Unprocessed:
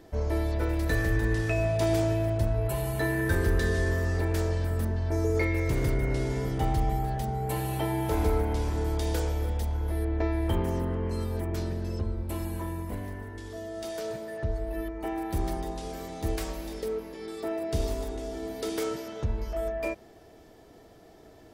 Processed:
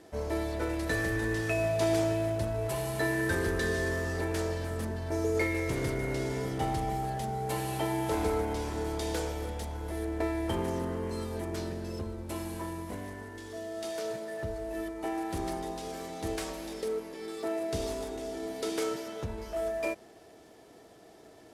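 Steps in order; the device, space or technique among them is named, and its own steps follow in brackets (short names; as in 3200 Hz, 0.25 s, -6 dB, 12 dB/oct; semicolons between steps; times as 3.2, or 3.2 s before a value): early wireless headset (HPF 200 Hz 6 dB/oct; CVSD 64 kbps)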